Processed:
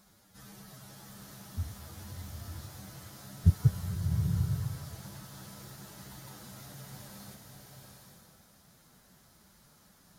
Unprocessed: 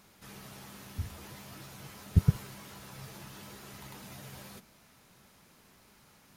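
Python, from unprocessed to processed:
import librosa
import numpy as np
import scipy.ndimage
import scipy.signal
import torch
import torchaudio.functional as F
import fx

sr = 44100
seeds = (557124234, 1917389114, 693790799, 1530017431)

y = fx.graphic_eq_15(x, sr, hz=(400, 1000, 2500), db=(-6, -4, -10))
y = fx.stretch_vocoder(y, sr, factor=1.6)
y = fx.rev_bloom(y, sr, seeds[0], attack_ms=840, drr_db=2.0)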